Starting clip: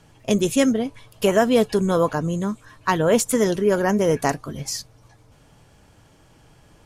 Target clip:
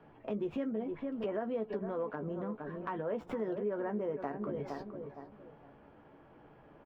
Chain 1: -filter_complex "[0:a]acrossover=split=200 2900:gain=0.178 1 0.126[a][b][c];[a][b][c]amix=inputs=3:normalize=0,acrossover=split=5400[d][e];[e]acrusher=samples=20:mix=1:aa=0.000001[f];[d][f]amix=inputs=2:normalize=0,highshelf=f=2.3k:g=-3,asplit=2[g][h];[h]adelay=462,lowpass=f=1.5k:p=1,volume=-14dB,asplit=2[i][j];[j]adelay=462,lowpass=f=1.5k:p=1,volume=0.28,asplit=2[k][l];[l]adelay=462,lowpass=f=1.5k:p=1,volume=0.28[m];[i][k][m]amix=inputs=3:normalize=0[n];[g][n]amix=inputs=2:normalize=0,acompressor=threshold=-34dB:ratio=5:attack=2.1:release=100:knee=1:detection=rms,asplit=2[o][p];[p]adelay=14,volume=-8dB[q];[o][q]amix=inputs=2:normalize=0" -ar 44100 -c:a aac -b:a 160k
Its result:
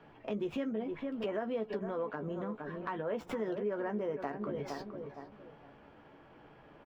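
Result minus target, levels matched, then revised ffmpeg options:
4000 Hz band +7.0 dB
-filter_complex "[0:a]acrossover=split=200 2900:gain=0.178 1 0.126[a][b][c];[a][b][c]amix=inputs=3:normalize=0,acrossover=split=5400[d][e];[e]acrusher=samples=20:mix=1:aa=0.000001[f];[d][f]amix=inputs=2:normalize=0,highshelf=f=2.3k:g=-14.5,asplit=2[g][h];[h]adelay=462,lowpass=f=1.5k:p=1,volume=-14dB,asplit=2[i][j];[j]adelay=462,lowpass=f=1.5k:p=1,volume=0.28,asplit=2[k][l];[l]adelay=462,lowpass=f=1.5k:p=1,volume=0.28[m];[i][k][m]amix=inputs=3:normalize=0[n];[g][n]amix=inputs=2:normalize=0,acompressor=threshold=-34dB:ratio=5:attack=2.1:release=100:knee=1:detection=rms,asplit=2[o][p];[p]adelay=14,volume=-8dB[q];[o][q]amix=inputs=2:normalize=0" -ar 44100 -c:a aac -b:a 160k

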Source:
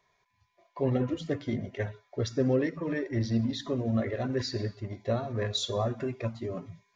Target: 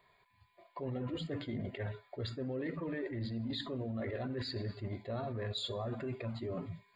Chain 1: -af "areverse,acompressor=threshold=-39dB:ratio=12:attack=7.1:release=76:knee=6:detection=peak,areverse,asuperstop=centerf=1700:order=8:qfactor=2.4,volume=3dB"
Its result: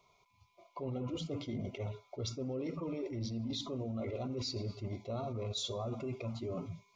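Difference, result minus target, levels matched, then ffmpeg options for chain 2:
8000 Hz band +12.0 dB
-af "areverse,acompressor=threshold=-39dB:ratio=12:attack=7.1:release=76:knee=6:detection=peak,areverse,asuperstop=centerf=5900:order=8:qfactor=2.4,volume=3dB"

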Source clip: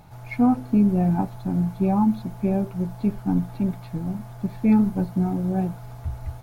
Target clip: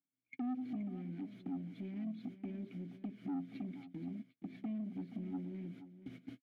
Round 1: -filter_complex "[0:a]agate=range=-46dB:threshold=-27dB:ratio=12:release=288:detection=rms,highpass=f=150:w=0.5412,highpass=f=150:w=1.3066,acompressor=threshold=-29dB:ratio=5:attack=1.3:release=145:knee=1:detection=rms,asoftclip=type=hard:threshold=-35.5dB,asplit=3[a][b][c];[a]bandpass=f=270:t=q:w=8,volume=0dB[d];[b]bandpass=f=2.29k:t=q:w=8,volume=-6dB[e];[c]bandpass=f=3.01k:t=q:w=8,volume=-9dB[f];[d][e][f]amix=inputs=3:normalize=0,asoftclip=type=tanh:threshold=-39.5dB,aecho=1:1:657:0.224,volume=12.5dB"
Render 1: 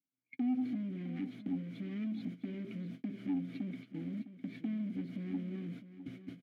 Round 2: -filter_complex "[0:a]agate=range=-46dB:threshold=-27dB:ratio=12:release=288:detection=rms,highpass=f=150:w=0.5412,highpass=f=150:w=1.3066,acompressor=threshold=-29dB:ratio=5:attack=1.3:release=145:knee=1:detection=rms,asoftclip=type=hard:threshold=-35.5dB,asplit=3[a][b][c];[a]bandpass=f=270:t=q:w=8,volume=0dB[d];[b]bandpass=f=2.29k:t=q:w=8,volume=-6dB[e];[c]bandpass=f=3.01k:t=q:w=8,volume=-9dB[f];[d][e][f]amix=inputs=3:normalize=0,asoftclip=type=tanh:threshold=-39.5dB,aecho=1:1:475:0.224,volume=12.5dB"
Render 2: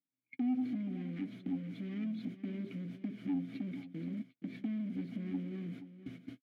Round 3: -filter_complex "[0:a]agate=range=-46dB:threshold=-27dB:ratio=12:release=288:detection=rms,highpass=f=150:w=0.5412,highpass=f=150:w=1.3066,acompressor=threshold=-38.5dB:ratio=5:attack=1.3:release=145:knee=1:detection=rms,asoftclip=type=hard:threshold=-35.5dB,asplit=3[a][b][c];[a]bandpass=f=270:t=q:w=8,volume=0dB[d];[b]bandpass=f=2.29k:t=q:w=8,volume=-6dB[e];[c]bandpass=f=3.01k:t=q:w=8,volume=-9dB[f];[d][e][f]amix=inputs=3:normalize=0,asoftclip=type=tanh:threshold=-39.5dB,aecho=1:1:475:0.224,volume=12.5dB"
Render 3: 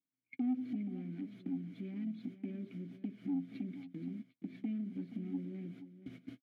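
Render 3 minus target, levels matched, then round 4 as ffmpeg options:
soft clip: distortion -10 dB
-filter_complex "[0:a]agate=range=-46dB:threshold=-27dB:ratio=12:release=288:detection=rms,highpass=f=150:w=0.5412,highpass=f=150:w=1.3066,acompressor=threshold=-38.5dB:ratio=5:attack=1.3:release=145:knee=1:detection=rms,asoftclip=type=hard:threshold=-35.5dB,asplit=3[a][b][c];[a]bandpass=f=270:t=q:w=8,volume=0dB[d];[b]bandpass=f=2.29k:t=q:w=8,volume=-6dB[e];[c]bandpass=f=3.01k:t=q:w=8,volume=-9dB[f];[d][e][f]amix=inputs=3:normalize=0,asoftclip=type=tanh:threshold=-47.5dB,aecho=1:1:475:0.224,volume=12.5dB"

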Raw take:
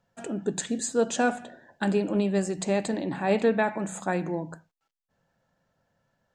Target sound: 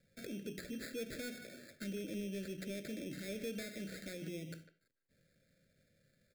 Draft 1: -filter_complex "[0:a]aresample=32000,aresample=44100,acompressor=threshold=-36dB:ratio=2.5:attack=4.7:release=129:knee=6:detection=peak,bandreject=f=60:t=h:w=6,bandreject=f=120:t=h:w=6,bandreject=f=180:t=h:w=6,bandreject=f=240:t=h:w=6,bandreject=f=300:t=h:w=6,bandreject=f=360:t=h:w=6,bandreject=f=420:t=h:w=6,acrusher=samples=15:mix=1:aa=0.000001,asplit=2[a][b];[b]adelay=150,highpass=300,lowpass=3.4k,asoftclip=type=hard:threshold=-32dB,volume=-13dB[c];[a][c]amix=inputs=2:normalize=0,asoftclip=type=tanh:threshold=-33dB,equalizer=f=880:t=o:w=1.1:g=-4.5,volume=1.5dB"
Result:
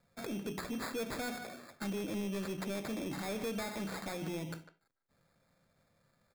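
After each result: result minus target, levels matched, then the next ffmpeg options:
1000 Hz band +15.0 dB; compressor: peak gain reduction -6.5 dB
-filter_complex "[0:a]aresample=32000,aresample=44100,acompressor=threshold=-36dB:ratio=2.5:attack=4.7:release=129:knee=6:detection=peak,bandreject=f=60:t=h:w=6,bandreject=f=120:t=h:w=6,bandreject=f=180:t=h:w=6,bandreject=f=240:t=h:w=6,bandreject=f=300:t=h:w=6,bandreject=f=360:t=h:w=6,bandreject=f=420:t=h:w=6,acrusher=samples=15:mix=1:aa=0.000001,asplit=2[a][b];[b]adelay=150,highpass=300,lowpass=3.4k,asoftclip=type=hard:threshold=-32dB,volume=-13dB[c];[a][c]amix=inputs=2:normalize=0,asoftclip=type=tanh:threshold=-33dB,asuperstop=centerf=950:order=8:qfactor=1.1,equalizer=f=880:t=o:w=1.1:g=-4.5,volume=1.5dB"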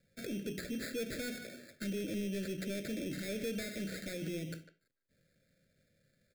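compressor: peak gain reduction -6.5 dB
-filter_complex "[0:a]aresample=32000,aresample=44100,acompressor=threshold=-47dB:ratio=2.5:attack=4.7:release=129:knee=6:detection=peak,bandreject=f=60:t=h:w=6,bandreject=f=120:t=h:w=6,bandreject=f=180:t=h:w=6,bandreject=f=240:t=h:w=6,bandreject=f=300:t=h:w=6,bandreject=f=360:t=h:w=6,bandreject=f=420:t=h:w=6,acrusher=samples=15:mix=1:aa=0.000001,asplit=2[a][b];[b]adelay=150,highpass=300,lowpass=3.4k,asoftclip=type=hard:threshold=-32dB,volume=-13dB[c];[a][c]amix=inputs=2:normalize=0,asoftclip=type=tanh:threshold=-33dB,asuperstop=centerf=950:order=8:qfactor=1.1,equalizer=f=880:t=o:w=1.1:g=-4.5,volume=1.5dB"

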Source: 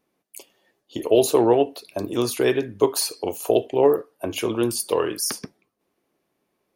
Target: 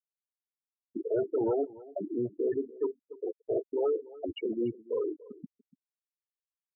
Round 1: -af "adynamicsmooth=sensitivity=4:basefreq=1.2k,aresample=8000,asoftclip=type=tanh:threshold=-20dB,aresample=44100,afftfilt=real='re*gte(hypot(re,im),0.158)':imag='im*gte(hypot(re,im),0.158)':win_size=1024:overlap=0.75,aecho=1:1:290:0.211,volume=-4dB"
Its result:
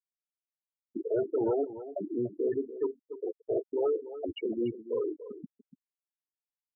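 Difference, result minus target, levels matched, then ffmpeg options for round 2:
echo-to-direct +6.5 dB
-af "adynamicsmooth=sensitivity=4:basefreq=1.2k,aresample=8000,asoftclip=type=tanh:threshold=-20dB,aresample=44100,afftfilt=real='re*gte(hypot(re,im),0.158)':imag='im*gte(hypot(re,im),0.158)':win_size=1024:overlap=0.75,aecho=1:1:290:0.1,volume=-4dB"

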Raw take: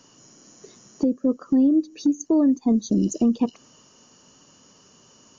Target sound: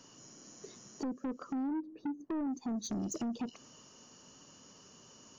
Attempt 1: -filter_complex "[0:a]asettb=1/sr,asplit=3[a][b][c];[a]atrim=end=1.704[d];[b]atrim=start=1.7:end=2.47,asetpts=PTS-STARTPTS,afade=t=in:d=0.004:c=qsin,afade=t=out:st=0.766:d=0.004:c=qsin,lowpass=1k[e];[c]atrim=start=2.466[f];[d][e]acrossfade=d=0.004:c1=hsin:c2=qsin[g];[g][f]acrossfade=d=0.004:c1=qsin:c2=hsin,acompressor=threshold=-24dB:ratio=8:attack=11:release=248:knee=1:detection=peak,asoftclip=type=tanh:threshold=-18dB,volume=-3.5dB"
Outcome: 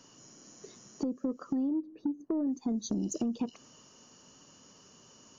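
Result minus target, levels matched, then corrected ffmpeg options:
soft clip: distortion -11 dB
-filter_complex "[0:a]asettb=1/sr,asplit=3[a][b][c];[a]atrim=end=1.704[d];[b]atrim=start=1.7:end=2.47,asetpts=PTS-STARTPTS,afade=t=in:d=0.004:c=qsin,afade=t=out:st=0.766:d=0.004:c=qsin,lowpass=1k[e];[c]atrim=start=2.466[f];[d][e]acrossfade=d=0.004:c1=hsin:c2=qsin[g];[g][f]acrossfade=d=0.004:c1=qsin:c2=hsin,acompressor=threshold=-24dB:ratio=8:attack=11:release=248:knee=1:detection=peak,asoftclip=type=tanh:threshold=-28.5dB,volume=-3.5dB"

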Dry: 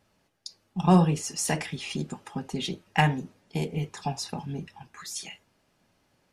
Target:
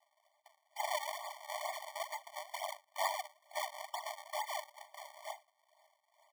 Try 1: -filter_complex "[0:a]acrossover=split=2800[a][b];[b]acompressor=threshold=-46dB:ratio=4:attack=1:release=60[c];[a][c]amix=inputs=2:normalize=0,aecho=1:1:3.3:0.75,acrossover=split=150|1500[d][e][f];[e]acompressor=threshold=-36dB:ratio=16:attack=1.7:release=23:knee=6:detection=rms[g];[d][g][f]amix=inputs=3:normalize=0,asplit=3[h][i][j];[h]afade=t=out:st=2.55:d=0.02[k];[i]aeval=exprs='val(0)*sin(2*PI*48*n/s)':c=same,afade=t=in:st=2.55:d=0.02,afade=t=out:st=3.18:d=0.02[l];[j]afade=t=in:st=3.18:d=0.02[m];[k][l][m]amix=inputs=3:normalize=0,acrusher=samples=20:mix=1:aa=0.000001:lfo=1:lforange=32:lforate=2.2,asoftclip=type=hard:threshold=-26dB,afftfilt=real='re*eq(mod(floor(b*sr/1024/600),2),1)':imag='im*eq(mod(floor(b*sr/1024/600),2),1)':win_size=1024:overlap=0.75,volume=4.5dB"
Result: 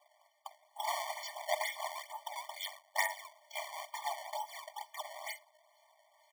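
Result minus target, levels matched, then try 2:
decimation with a swept rate: distortion -15 dB; compressor: peak gain reduction +5.5 dB
-filter_complex "[0:a]acrossover=split=2800[a][b];[b]acompressor=threshold=-46dB:ratio=4:attack=1:release=60[c];[a][c]amix=inputs=2:normalize=0,aecho=1:1:3.3:0.75,acrossover=split=150|1500[d][e][f];[e]acompressor=threshold=-30dB:ratio=16:attack=1.7:release=23:knee=6:detection=rms[g];[d][g][f]amix=inputs=3:normalize=0,asplit=3[h][i][j];[h]afade=t=out:st=2.55:d=0.02[k];[i]aeval=exprs='val(0)*sin(2*PI*48*n/s)':c=same,afade=t=in:st=2.55:d=0.02,afade=t=out:st=3.18:d=0.02[l];[j]afade=t=in:st=3.18:d=0.02[m];[k][l][m]amix=inputs=3:normalize=0,acrusher=samples=73:mix=1:aa=0.000001:lfo=1:lforange=117:lforate=2.2,asoftclip=type=hard:threshold=-26dB,afftfilt=real='re*eq(mod(floor(b*sr/1024/600),2),1)':imag='im*eq(mod(floor(b*sr/1024/600),2),1)':win_size=1024:overlap=0.75,volume=4.5dB"

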